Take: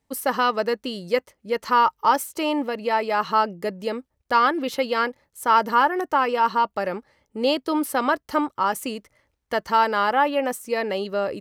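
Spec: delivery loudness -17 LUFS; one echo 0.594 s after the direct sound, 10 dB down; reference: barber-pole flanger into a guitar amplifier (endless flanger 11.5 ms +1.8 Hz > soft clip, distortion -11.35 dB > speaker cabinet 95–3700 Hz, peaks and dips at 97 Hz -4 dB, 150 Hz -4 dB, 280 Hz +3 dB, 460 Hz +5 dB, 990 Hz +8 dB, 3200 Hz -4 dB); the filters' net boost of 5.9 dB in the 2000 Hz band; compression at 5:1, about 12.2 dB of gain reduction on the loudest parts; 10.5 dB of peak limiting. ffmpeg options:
-filter_complex "[0:a]equalizer=f=2k:t=o:g=7.5,acompressor=threshold=-25dB:ratio=5,alimiter=limit=-23.5dB:level=0:latency=1,aecho=1:1:594:0.316,asplit=2[a][b];[b]adelay=11.5,afreqshift=1.8[c];[a][c]amix=inputs=2:normalize=1,asoftclip=threshold=-34dB,highpass=95,equalizer=f=97:t=q:w=4:g=-4,equalizer=f=150:t=q:w=4:g=-4,equalizer=f=280:t=q:w=4:g=3,equalizer=f=460:t=q:w=4:g=5,equalizer=f=990:t=q:w=4:g=8,equalizer=f=3.2k:t=q:w=4:g=-4,lowpass=f=3.7k:w=0.5412,lowpass=f=3.7k:w=1.3066,volume=20.5dB"

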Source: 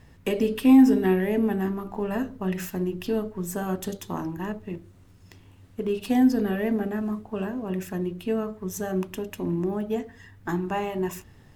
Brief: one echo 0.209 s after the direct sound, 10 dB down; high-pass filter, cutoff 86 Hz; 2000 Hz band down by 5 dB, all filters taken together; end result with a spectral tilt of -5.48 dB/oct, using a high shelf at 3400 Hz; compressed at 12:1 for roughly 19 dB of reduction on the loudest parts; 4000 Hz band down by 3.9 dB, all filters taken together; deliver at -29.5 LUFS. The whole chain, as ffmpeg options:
-af "highpass=86,equalizer=f=2k:t=o:g=-6,highshelf=f=3.4k:g=3,equalizer=f=4k:t=o:g=-5,acompressor=threshold=-31dB:ratio=12,aecho=1:1:209:0.316,volume=6.5dB"

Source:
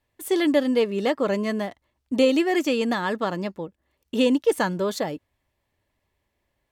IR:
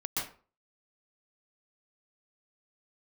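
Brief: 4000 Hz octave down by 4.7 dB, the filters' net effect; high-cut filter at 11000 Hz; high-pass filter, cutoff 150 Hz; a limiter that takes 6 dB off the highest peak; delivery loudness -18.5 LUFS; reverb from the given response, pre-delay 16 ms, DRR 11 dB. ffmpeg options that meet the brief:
-filter_complex "[0:a]highpass=150,lowpass=11k,equalizer=f=4k:t=o:g=-6.5,alimiter=limit=-14.5dB:level=0:latency=1,asplit=2[a][b];[1:a]atrim=start_sample=2205,adelay=16[c];[b][c]afir=irnorm=-1:irlink=0,volume=-16dB[d];[a][d]amix=inputs=2:normalize=0,volume=6.5dB"

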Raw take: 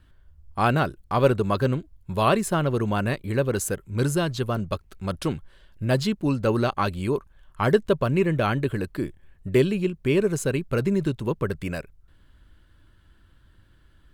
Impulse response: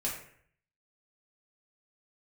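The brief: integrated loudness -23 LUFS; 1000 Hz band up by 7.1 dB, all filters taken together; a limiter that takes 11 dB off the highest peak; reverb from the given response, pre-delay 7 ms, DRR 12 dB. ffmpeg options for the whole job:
-filter_complex "[0:a]equalizer=f=1k:t=o:g=9,alimiter=limit=-12dB:level=0:latency=1,asplit=2[a][b];[1:a]atrim=start_sample=2205,adelay=7[c];[b][c]afir=irnorm=-1:irlink=0,volume=-16dB[d];[a][d]amix=inputs=2:normalize=0,volume=1.5dB"

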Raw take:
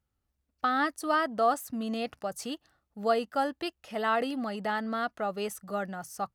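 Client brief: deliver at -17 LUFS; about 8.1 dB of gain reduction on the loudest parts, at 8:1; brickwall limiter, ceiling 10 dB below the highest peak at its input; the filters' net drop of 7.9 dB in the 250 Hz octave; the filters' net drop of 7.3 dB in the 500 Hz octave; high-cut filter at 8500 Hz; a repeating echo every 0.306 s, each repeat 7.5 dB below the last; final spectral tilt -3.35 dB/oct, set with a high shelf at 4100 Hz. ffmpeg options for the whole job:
-af "lowpass=8.5k,equalizer=f=250:t=o:g=-7,equalizer=f=500:t=o:g=-9,highshelf=f=4.1k:g=-3.5,acompressor=threshold=-33dB:ratio=8,alimiter=level_in=7dB:limit=-24dB:level=0:latency=1,volume=-7dB,aecho=1:1:306|612|918|1224|1530:0.422|0.177|0.0744|0.0312|0.0131,volume=24dB"

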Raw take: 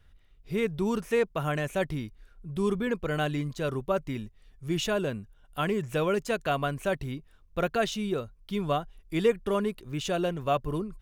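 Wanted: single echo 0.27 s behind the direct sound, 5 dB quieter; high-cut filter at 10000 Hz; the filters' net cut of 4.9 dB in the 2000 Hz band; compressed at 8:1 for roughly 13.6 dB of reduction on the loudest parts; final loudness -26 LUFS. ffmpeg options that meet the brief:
-af "lowpass=10k,equalizer=f=2k:t=o:g=-7,acompressor=threshold=-33dB:ratio=8,aecho=1:1:270:0.562,volume=11.5dB"

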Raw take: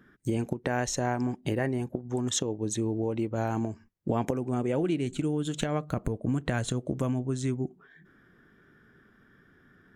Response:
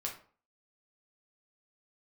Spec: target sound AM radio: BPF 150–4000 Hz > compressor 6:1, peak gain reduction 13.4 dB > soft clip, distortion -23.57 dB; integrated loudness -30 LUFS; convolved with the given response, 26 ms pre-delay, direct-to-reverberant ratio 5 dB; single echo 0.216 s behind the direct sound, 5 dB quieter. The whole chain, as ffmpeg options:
-filter_complex "[0:a]aecho=1:1:216:0.562,asplit=2[a][b];[1:a]atrim=start_sample=2205,adelay=26[c];[b][c]afir=irnorm=-1:irlink=0,volume=-6dB[d];[a][d]amix=inputs=2:normalize=0,highpass=150,lowpass=4k,acompressor=threshold=-35dB:ratio=6,asoftclip=threshold=-26.5dB,volume=10dB"

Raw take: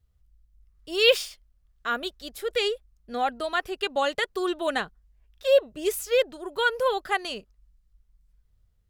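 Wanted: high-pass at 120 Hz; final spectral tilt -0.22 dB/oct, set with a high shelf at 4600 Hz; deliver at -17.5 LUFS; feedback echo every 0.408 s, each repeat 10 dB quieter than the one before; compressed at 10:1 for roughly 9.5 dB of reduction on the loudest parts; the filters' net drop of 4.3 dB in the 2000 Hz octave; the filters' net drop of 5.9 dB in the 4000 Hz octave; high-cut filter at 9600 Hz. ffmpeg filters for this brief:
-af "highpass=120,lowpass=9.6k,equalizer=f=2k:t=o:g=-4,equalizer=f=4k:t=o:g=-3.5,highshelf=f=4.6k:g=-6,acompressor=threshold=-24dB:ratio=10,aecho=1:1:408|816|1224|1632:0.316|0.101|0.0324|0.0104,volume=14.5dB"

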